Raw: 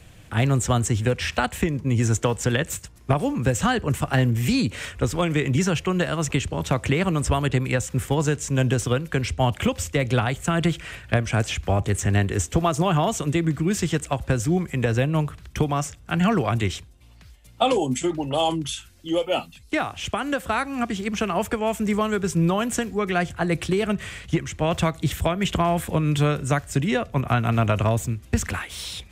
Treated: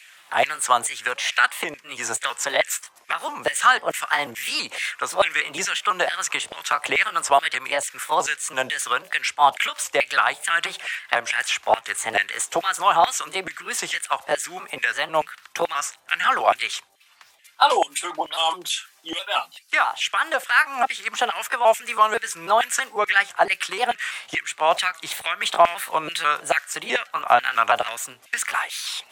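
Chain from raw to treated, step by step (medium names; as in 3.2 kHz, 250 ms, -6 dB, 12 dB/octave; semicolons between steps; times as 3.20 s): pitch shift switched off and on +2 st, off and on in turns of 164 ms; LFO high-pass saw down 2.3 Hz 650–2200 Hz; trim +4 dB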